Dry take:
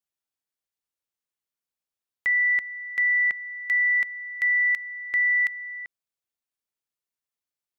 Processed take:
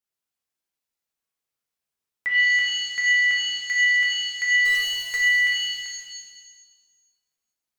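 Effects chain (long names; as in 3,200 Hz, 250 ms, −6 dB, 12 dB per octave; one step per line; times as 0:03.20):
0:04.65–0:05.18: one scale factor per block 3 bits
reverb with rising layers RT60 1.3 s, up +7 semitones, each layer −2 dB, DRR −3.5 dB
level −2.5 dB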